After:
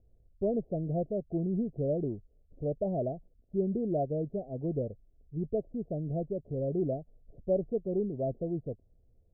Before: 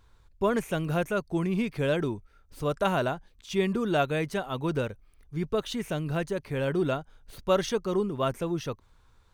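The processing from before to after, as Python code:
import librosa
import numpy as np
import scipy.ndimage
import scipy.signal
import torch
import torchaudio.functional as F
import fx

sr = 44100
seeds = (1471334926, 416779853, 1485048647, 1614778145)

y = scipy.signal.sosfilt(scipy.signal.cheby1(6, 1.0, 690.0, 'lowpass', fs=sr, output='sos'), x)
y = F.gain(torch.from_numpy(y), -3.0).numpy()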